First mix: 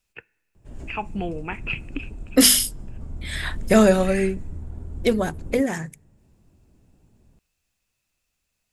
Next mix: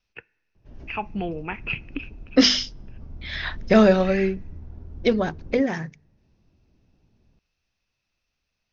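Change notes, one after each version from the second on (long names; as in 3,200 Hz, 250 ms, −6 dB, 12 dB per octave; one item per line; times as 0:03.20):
background −5.0 dB
master: add Butterworth low-pass 6,100 Hz 96 dB per octave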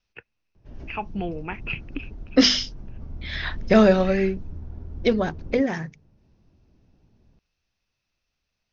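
background +3.0 dB
reverb: off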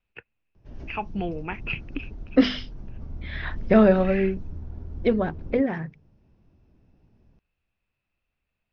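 second voice: add high-frequency loss of the air 400 metres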